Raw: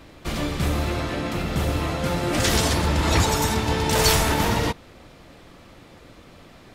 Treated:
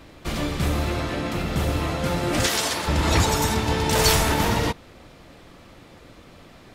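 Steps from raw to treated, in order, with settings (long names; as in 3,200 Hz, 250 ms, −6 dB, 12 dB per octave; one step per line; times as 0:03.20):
0:02.47–0:02.88: high-pass filter 650 Hz 6 dB per octave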